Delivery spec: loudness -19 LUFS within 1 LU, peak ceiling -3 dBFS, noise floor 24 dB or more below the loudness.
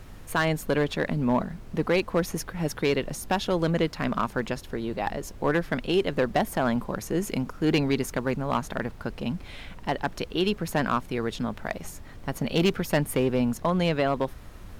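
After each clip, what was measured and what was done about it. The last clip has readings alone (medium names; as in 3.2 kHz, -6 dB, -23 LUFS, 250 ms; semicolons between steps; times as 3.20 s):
clipped samples 0.5%; clipping level -15.5 dBFS; noise floor -44 dBFS; noise floor target -52 dBFS; loudness -27.5 LUFS; peak level -15.5 dBFS; loudness target -19.0 LUFS
-> clip repair -15.5 dBFS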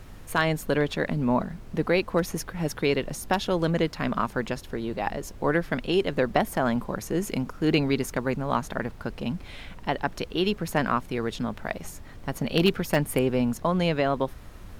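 clipped samples 0.0%; noise floor -44 dBFS; noise floor target -51 dBFS
-> noise print and reduce 7 dB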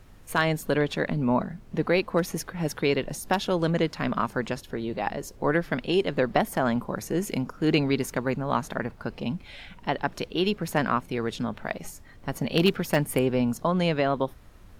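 noise floor -49 dBFS; noise floor target -51 dBFS
-> noise print and reduce 6 dB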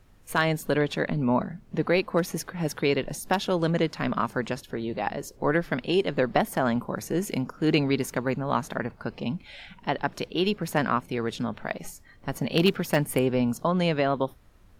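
noise floor -54 dBFS; loudness -27.0 LUFS; peak level -7.0 dBFS; loudness target -19.0 LUFS
-> trim +8 dB; peak limiter -3 dBFS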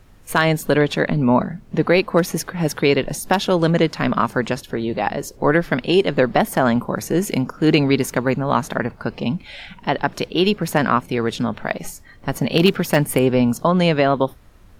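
loudness -19.5 LUFS; peak level -3.0 dBFS; noise floor -46 dBFS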